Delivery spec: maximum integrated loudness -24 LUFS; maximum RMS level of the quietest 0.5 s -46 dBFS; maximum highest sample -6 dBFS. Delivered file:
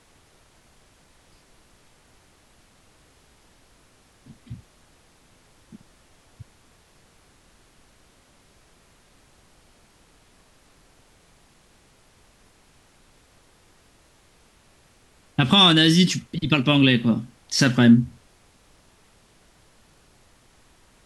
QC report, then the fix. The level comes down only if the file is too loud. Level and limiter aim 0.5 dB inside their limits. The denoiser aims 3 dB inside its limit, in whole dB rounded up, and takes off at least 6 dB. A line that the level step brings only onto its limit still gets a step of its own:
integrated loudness -18.0 LUFS: fail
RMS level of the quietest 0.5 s -57 dBFS: pass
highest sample -5.0 dBFS: fail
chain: trim -6.5 dB

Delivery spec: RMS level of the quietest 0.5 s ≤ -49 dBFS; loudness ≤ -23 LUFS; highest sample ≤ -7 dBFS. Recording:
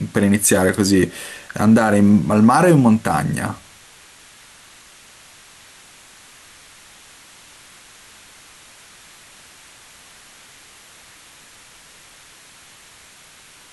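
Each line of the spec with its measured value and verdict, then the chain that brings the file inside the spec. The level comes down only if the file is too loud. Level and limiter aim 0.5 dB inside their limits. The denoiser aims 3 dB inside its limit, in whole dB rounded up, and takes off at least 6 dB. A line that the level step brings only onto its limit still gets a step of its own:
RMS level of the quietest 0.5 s -46 dBFS: fail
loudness -15.5 LUFS: fail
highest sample -3.5 dBFS: fail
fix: trim -8 dB

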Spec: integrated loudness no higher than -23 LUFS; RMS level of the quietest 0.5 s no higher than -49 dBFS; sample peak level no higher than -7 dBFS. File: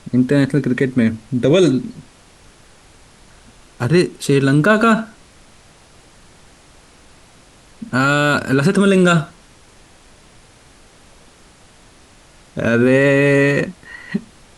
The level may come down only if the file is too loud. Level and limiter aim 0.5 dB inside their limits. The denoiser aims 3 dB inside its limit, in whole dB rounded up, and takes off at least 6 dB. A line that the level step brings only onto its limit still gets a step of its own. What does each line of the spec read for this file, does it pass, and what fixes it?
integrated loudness -15.5 LUFS: fail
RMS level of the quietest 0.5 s -47 dBFS: fail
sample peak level -4.0 dBFS: fail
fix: trim -8 dB

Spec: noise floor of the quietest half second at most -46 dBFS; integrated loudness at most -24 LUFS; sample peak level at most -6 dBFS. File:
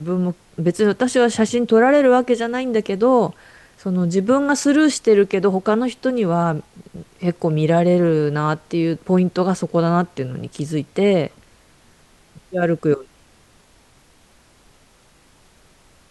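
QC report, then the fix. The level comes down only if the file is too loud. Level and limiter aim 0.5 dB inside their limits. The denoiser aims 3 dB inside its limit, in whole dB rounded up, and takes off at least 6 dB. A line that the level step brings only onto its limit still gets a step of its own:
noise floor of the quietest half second -54 dBFS: pass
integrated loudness -18.5 LUFS: fail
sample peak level -5.5 dBFS: fail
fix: trim -6 dB

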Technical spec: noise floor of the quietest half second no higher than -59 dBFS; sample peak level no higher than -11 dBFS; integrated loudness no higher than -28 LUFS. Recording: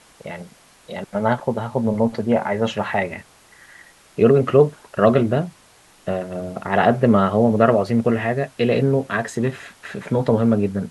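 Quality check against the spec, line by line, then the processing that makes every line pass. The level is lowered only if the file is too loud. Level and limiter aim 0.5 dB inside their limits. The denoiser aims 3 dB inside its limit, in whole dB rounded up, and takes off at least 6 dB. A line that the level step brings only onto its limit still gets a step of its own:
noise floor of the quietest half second -52 dBFS: fail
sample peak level -2.5 dBFS: fail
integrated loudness -19.5 LUFS: fail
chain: trim -9 dB

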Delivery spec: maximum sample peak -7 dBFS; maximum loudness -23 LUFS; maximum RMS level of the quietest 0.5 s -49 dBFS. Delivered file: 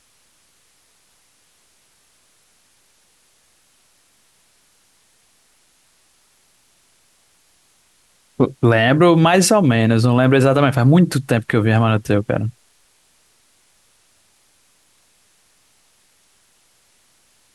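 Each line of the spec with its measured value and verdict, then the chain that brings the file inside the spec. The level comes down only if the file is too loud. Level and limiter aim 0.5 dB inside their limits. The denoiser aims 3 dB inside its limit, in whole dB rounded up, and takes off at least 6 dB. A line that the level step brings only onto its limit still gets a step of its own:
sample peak -4.0 dBFS: fail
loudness -15.0 LUFS: fail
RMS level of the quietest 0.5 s -58 dBFS: pass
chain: trim -8.5 dB

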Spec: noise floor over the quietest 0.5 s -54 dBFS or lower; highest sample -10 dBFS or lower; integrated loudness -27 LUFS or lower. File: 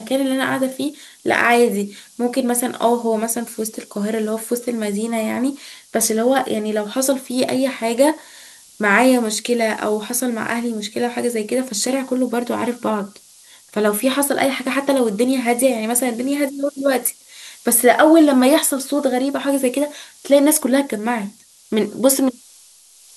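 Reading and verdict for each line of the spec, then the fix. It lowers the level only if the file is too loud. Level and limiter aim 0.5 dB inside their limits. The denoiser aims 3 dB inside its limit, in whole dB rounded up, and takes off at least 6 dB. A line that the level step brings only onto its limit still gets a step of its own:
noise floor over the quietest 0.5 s -48 dBFS: fail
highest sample -2.0 dBFS: fail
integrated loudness -18.5 LUFS: fail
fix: trim -9 dB

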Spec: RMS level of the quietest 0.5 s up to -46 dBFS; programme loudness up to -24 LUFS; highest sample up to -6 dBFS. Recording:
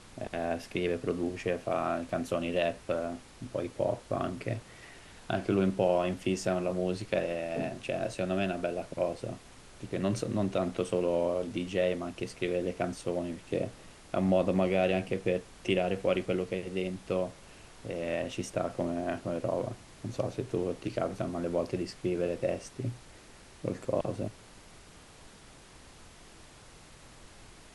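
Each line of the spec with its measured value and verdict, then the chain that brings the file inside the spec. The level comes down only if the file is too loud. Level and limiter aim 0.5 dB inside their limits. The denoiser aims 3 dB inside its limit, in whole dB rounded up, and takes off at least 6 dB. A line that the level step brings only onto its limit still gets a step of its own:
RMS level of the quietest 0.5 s -53 dBFS: pass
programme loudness -32.5 LUFS: pass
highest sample -14.0 dBFS: pass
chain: none needed

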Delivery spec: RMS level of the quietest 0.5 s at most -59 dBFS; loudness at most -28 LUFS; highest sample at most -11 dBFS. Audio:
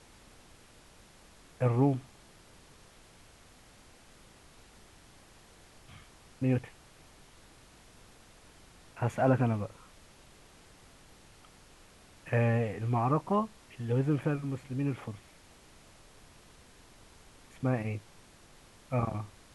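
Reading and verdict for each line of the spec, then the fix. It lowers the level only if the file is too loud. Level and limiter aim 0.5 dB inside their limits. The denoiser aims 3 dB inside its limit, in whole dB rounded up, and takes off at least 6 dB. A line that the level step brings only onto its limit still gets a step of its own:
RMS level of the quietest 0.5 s -57 dBFS: fail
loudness -31.5 LUFS: pass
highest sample -13.0 dBFS: pass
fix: noise reduction 6 dB, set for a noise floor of -57 dBFS

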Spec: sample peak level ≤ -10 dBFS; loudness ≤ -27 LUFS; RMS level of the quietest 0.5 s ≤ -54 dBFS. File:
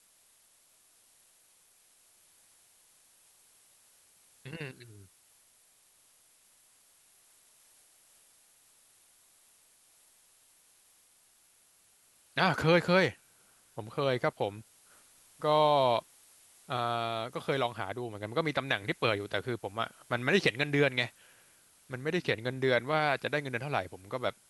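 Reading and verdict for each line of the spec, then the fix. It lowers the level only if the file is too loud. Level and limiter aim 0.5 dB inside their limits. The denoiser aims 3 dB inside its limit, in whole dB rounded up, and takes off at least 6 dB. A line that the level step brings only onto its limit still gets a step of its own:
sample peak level -11.5 dBFS: pass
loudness -30.5 LUFS: pass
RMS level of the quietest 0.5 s -65 dBFS: pass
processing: none needed

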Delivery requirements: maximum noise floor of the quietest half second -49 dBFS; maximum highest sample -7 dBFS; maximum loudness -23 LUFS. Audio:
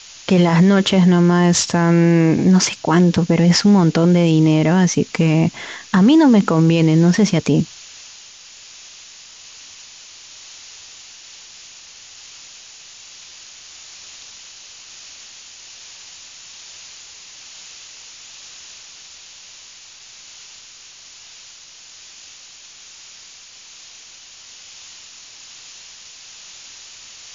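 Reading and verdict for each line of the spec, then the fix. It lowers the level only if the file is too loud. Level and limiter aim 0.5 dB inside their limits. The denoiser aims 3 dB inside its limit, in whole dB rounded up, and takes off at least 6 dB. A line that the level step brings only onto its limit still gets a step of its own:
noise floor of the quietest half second -42 dBFS: fail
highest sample -5.0 dBFS: fail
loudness -14.5 LUFS: fail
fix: trim -9 dB

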